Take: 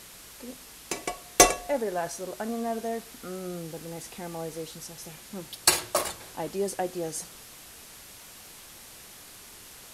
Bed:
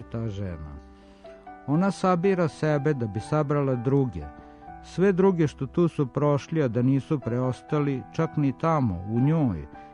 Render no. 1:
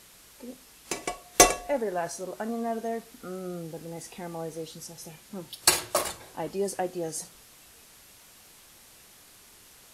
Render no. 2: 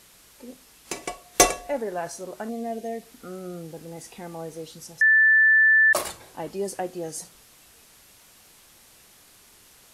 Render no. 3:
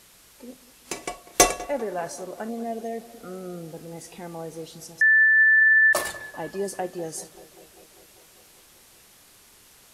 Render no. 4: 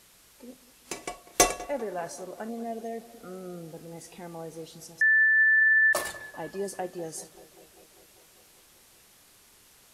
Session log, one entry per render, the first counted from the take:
noise print and reduce 6 dB
2.49–3.03 band shelf 1200 Hz -12.5 dB 1 oct; 5.01–5.93 bleep 1760 Hz -13.5 dBFS
tape echo 0.196 s, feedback 79%, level -17 dB, low-pass 1900 Hz
gain -4 dB

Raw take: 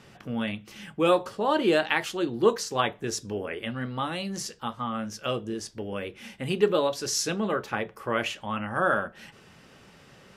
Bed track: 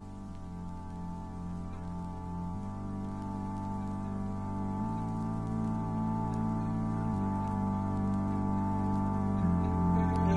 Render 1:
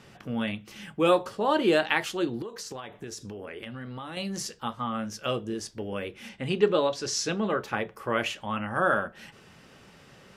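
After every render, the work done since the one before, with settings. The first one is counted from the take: 2.42–4.17 compressor 20:1, threshold -34 dBFS; 6.29–7.6 LPF 6800 Hz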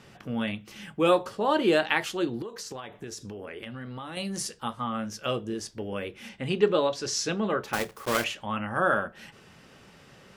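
4.15–4.85 bell 9400 Hz +9 dB 0.29 oct; 7.73–8.25 block floating point 3-bit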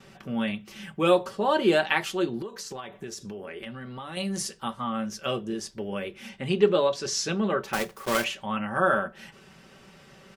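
gate with hold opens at -46 dBFS; comb 5.2 ms, depth 46%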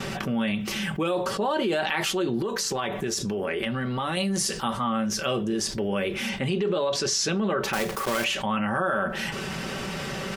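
limiter -19 dBFS, peak gain reduction 11 dB; fast leveller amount 70%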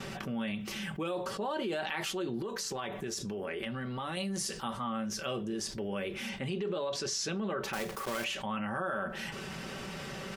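gain -9 dB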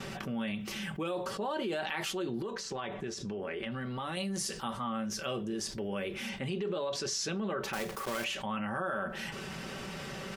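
2.5–3.72 air absorption 71 m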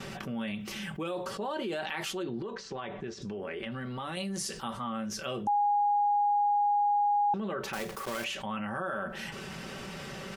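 2.23–3.22 air absorption 110 m; 5.47–7.34 bleep 822 Hz -23 dBFS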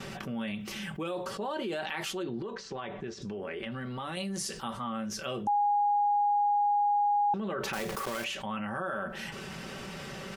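7.47–8.08 fast leveller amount 70%

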